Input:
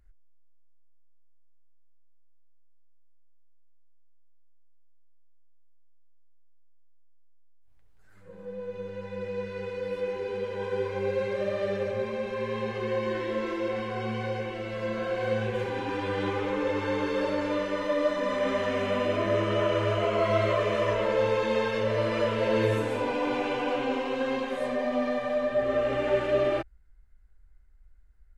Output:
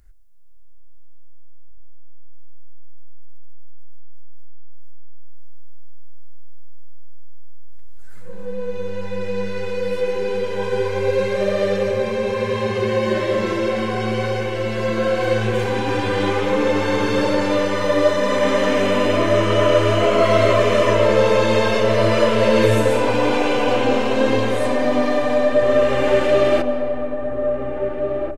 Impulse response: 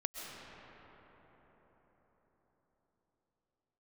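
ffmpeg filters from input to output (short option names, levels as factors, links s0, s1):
-filter_complex "[0:a]bass=f=250:g=0,treble=f=4000:g=8,asplit=2[s0][s1];[s1]adelay=1691,volume=0.501,highshelf=f=4000:g=-38[s2];[s0][s2]amix=inputs=2:normalize=0,asplit=2[s3][s4];[1:a]atrim=start_sample=2205[s5];[s4][s5]afir=irnorm=-1:irlink=0,volume=0.398[s6];[s3][s6]amix=inputs=2:normalize=0,volume=2.11"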